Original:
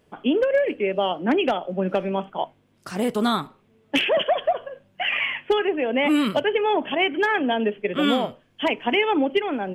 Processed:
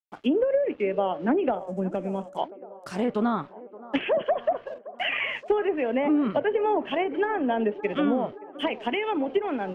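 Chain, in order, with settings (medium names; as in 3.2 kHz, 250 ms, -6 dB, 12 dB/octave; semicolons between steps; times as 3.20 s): crossover distortion -48.5 dBFS; 1.55–2.37 s: FFT filter 200 Hz 0 dB, 4.3 kHz -13 dB, 7.4 kHz +11 dB; 8.65–9.28 s: compression 3:1, threshold -22 dBFS, peak gain reduction 5.5 dB; low-pass that closes with the level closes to 470 Hz, closed at -14.5 dBFS; feedback echo behind a band-pass 572 ms, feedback 63%, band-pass 620 Hz, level -16 dB; trim -2 dB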